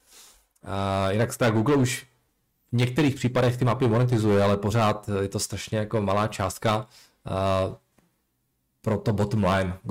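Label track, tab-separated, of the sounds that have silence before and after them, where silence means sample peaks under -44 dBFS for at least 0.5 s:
2.730000	7.990000	sound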